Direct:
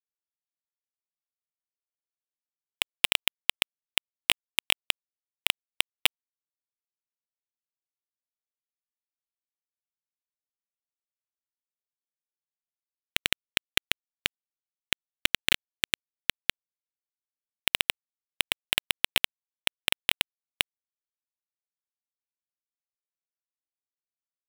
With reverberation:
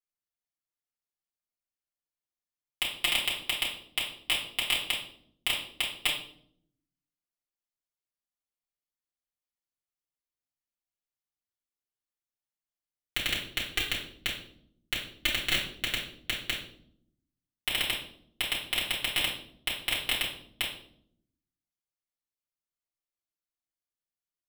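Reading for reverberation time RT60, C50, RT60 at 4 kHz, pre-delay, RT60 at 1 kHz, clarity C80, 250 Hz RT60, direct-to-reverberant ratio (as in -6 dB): 0.65 s, 5.5 dB, 0.50 s, 3 ms, 0.50 s, 9.5 dB, 1.1 s, -7.5 dB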